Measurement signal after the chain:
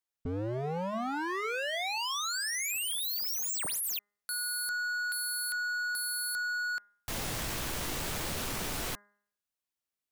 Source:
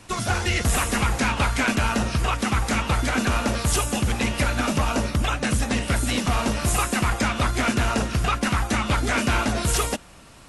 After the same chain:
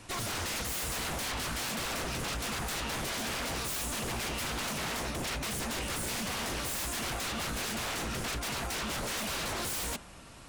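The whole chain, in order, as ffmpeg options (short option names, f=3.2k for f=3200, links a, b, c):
-af "aeval=exprs='0.0447*(abs(mod(val(0)/0.0447+3,4)-2)-1)':c=same,bandreject=f=204.8:t=h:w=4,bandreject=f=409.6:t=h:w=4,bandreject=f=614.4:t=h:w=4,bandreject=f=819.2:t=h:w=4,bandreject=f=1.024k:t=h:w=4,bandreject=f=1.2288k:t=h:w=4,bandreject=f=1.4336k:t=h:w=4,bandreject=f=1.6384k:t=h:w=4,bandreject=f=1.8432k:t=h:w=4,bandreject=f=2.048k:t=h:w=4,volume=-3dB"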